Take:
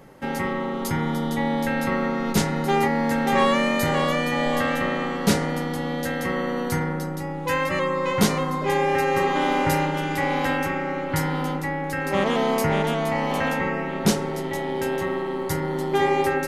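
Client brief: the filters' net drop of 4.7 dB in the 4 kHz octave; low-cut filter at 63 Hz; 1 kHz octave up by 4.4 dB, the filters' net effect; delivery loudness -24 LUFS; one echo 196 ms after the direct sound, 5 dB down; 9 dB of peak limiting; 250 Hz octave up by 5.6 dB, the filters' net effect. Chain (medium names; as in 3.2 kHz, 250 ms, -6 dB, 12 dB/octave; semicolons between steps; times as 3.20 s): high-pass 63 Hz; peaking EQ 250 Hz +6.5 dB; peaking EQ 1 kHz +5.5 dB; peaking EQ 4 kHz -7 dB; peak limiter -12 dBFS; delay 196 ms -5 dB; trim -2.5 dB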